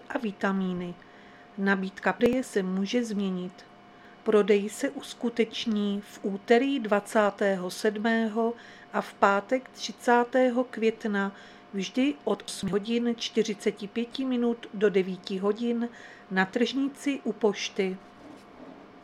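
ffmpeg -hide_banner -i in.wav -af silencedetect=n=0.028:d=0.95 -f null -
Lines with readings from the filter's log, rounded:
silence_start: 17.95
silence_end: 19.03 | silence_duration: 1.09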